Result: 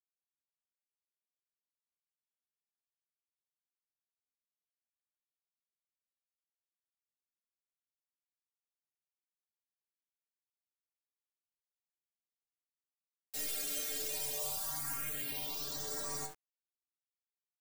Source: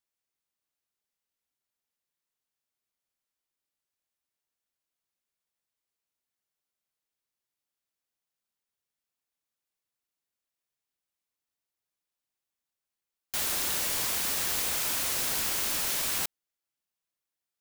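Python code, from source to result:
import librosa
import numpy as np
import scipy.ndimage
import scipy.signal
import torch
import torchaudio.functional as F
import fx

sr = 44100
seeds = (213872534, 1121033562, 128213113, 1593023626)

p1 = fx.tracing_dist(x, sr, depth_ms=0.5)
p2 = fx.stiff_resonator(p1, sr, f0_hz=140.0, decay_s=0.47, stiffness=0.008)
p3 = p2 + fx.room_early_taps(p2, sr, ms=(48, 69), db=(-17.5, -16.5), dry=0)
p4 = fx.phaser_stages(p3, sr, stages=4, low_hz=160.0, high_hz=3000.0, hz=0.2, feedback_pct=5)
p5 = np.where(np.abs(p4) >= 10.0 ** (-55.0 / 20.0), p4, 0.0)
y = F.gain(torch.from_numpy(p5), 7.0).numpy()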